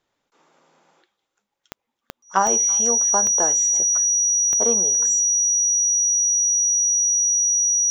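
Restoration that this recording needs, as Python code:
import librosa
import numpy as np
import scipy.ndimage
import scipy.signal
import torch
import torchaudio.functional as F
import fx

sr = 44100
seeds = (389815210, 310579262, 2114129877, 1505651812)

y = fx.fix_declick_ar(x, sr, threshold=10.0)
y = fx.notch(y, sr, hz=5800.0, q=30.0)
y = fx.fix_echo_inverse(y, sr, delay_ms=333, level_db=-24.0)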